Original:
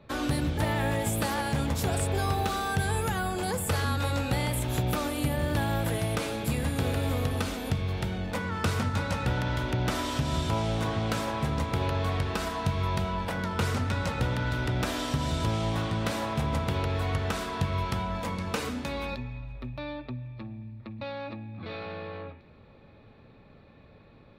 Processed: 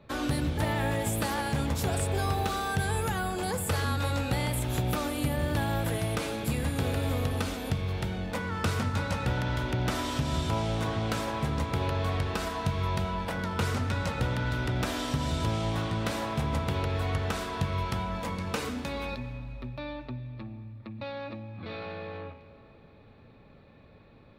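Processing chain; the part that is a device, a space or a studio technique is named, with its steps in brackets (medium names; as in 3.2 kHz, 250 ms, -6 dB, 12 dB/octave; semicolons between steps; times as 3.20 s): saturated reverb return (on a send at -13.5 dB: reverberation RT60 2.7 s, pre-delay 84 ms + saturation -31 dBFS, distortion -9 dB); on the sum: trim -1 dB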